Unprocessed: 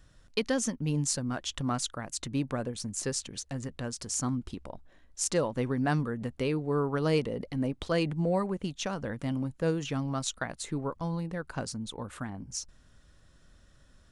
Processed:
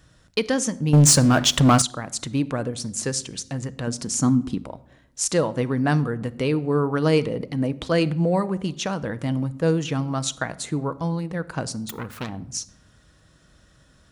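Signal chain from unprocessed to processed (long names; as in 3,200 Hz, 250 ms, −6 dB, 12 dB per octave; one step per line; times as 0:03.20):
0:11.89–0:12.29: phase distortion by the signal itself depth 0.54 ms
high-pass filter 57 Hz
rectangular room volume 2,300 cubic metres, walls furnished, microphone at 0.57 metres
0:00.93–0:01.82: leveller curve on the samples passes 3
0:03.87–0:04.64: parametric band 220 Hz +8.5 dB 1.3 octaves
level +6.5 dB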